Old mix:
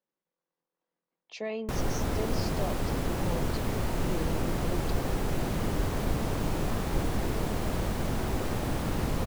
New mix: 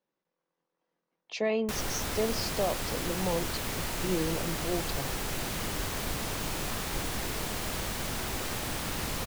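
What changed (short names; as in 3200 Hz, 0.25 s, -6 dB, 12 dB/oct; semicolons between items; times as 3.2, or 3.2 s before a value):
speech +6.0 dB; background: add tilt shelf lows -7.5 dB, about 1200 Hz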